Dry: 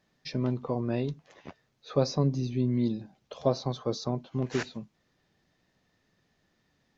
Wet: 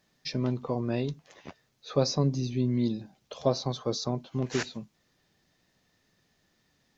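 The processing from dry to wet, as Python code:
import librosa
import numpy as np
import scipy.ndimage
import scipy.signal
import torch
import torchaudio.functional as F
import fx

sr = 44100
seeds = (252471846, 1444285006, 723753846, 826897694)

y = fx.high_shelf(x, sr, hz=4100.0, db=8.5)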